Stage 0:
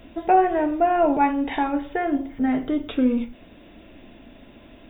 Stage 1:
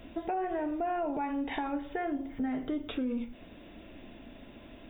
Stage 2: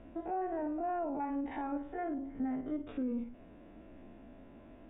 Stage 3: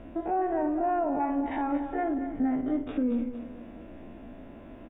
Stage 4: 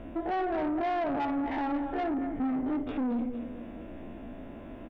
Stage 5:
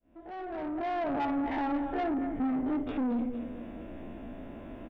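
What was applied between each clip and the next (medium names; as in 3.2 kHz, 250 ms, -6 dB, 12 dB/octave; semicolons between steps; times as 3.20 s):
peak limiter -15.5 dBFS, peak gain reduction 8 dB; compression 2.5:1, threshold -30 dBFS, peak gain reduction 7.5 dB; trim -3 dB
spectrogram pixelated in time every 50 ms; low-pass 1.5 kHz 12 dB/octave; trim -2.5 dB
feedback delay 231 ms, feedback 41%, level -10.5 dB; trim +8 dB
saturation -29 dBFS, distortion -11 dB; trim +2.5 dB
fade-in on the opening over 1.24 s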